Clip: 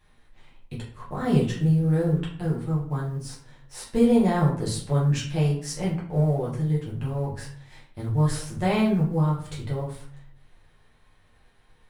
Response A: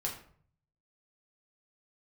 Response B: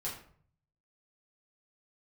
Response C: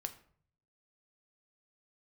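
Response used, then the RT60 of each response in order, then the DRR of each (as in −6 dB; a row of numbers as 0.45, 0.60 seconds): B; 0.55, 0.55, 0.55 seconds; −2.0, −6.5, 7.0 decibels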